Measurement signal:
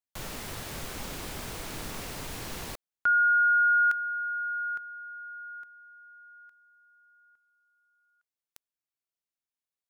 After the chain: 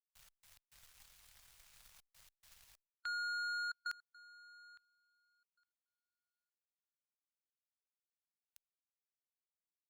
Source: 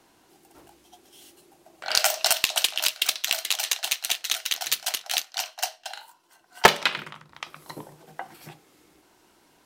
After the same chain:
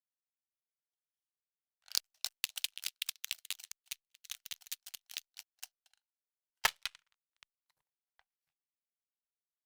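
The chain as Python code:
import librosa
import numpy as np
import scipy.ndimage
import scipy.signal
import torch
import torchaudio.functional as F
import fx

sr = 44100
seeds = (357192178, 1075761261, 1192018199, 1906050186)

y = fx.step_gate(x, sr, bpm=105, pattern='xx.x.xxxxxxx', floor_db=-24.0, edge_ms=4.5)
y = fx.power_curve(y, sr, exponent=2.0)
y = fx.tone_stack(y, sr, knobs='10-0-10')
y = fx.hpss(y, sr, part='harmonic', gain_db=-3)
y = y * librosa.db_to_amplitude(-7.0)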